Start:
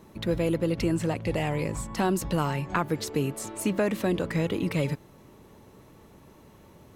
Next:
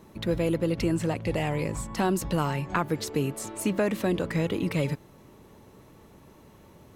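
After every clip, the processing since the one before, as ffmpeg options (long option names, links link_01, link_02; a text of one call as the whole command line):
ffmpeg -i in.wav -af anull out.wav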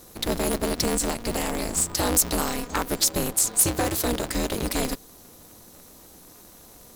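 ffmpeg -i in.wav -af "aexciter=amount=4.1:drive=7.8:freq=3800,aeval=exprs='val(0)*sgn(sin(2*PI*120*n/s))':channel_layout=same" out.wav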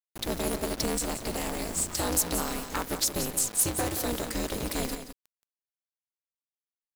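ffmpeg -i in.wav -af "acrusher=bits=5:mix=0:aa=0.000001,aecho=1:1:175:0.316,volume=-5.5dB" out.wav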